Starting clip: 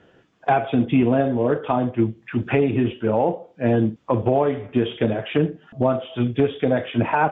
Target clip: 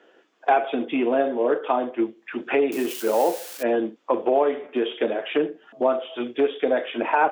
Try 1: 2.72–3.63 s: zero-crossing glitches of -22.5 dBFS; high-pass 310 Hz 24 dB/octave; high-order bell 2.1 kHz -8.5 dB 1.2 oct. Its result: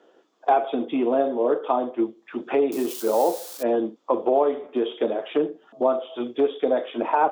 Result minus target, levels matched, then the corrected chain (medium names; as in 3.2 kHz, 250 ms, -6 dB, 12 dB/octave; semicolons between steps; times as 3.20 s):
2 kHz band -7.5 dB
2.72–3.63 s: zero-crossing glitches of -22.5 dBFS; high-pass 310 Hz 24 dB/octave